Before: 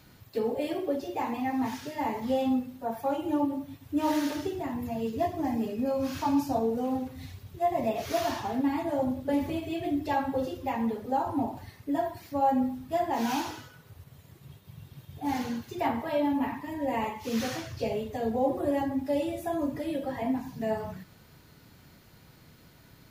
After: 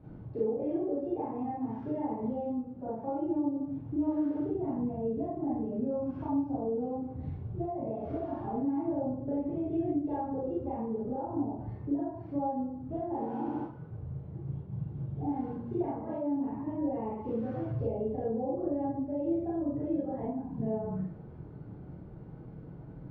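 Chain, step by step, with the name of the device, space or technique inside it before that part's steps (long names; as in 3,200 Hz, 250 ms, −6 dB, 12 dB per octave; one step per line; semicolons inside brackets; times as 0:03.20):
0:13.09–0:13.63: flutter between parallel walls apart 11.3 metres, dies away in 1.2 s
television next door (downward compressor 6 to 1, threshold −39 dBFS, peak gain reduction 17 dB; low-pass filter 520 Hz 12 dB per octave; convolution reverb RT60 0.35 s, pre-delay 30 ms, DRR −7.5 dB)
level +3.5 dB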